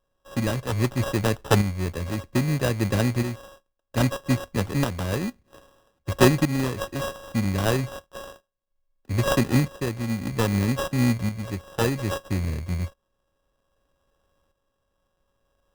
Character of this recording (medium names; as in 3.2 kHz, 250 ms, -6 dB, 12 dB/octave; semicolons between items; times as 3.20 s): a buzz of ramps at a fixed pitch in blocks of 16 samples; tremolo saw up 0.62 Hz, depth 60%; aliases and images of a low sample rate 2.2 kHz, jitter 0%